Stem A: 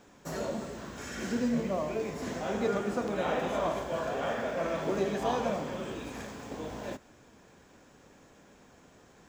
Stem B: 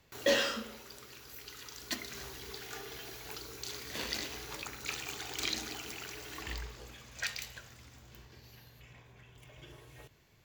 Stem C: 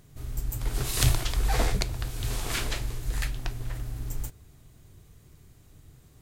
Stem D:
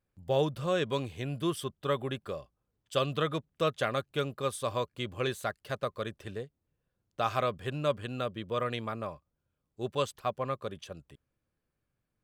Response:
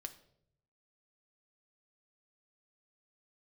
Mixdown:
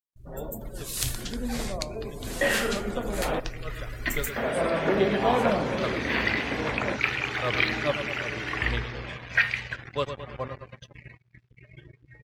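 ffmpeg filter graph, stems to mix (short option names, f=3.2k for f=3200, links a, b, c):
-filter_complex "[0:a]lowpass=f=4k:w=0.5412,lowpass=f=4k:w=1.3066,volume=-5dB,asplit=3[a][b][c];[a]atrim=end=3.4,asetpts=PTS-STARTPTS,afade=t=out:st=3.396:d=0.004:c=hsin[d];[b]atrim=start=3.4:end=4.36,asetpts=PTS-STARTPTS,volume=0[e];[c]atrim=start=4.36,asetpts=PTS-STARTPTS,afade=t=in:d=0.004:c=hsin[f];[d][e][f]concat=n=3:v=0:a=1,asplit=2[g][h];[h]volume=-20.5dB[i];[1:a]lowpass=f=5.7k:w=0.5412,lowpass=f=5.7k:w=1.3066,acrossover=split=3400[j][k];[k]acompressor=threshold=-53dB:ratio=4:attack=1:release=60[l];[j][l]amix=inputs=2:normalize=0,equalizer=f=125:t=o:w=1:g=6,equalizer=f=2k:t=o:w=1:g=9,equalizer=f=4k:t=o:w=1:g=-4,adelay=2150,volume=-3.5dB,asplit=2[m][n];[n]volume=-13.5dB[o];[2:a]highshelf=f=2.2k:g=10.5,volume=-12dB,asplit=2[p][q];[q]volume=-12dB[r];[3:a]aeval=exprs='val(0)*pow(10,-26*(0.5-0.5*cos(2*PI*2.4*n/s))/20)':c=same,volume=-10.5dB,asplit=2[s][t];[t]volume=-9dB[u];[4:a]atrim=start_sample=2205[v];[o][r]amix=inputs=2:normalize=0[w];[w][v]afir=irnorm=-1:irlink=0[x];[i][u]amix=inputs=2:normalize=0,aecho=0:1:108|216|324|432|540|648|756|864|972:1|0.59|0.348|0.205|0.121|0.0715|0.0422|0.0249|0.0147[y];[g][m][p][s][x][y]amix=inputs=6:normalize=0,acrusher=bits=7:mix=0:aa=0.5,dynaudnorm=f=380:g=13:m=13dB,afftdn=nr=26:nf=-44"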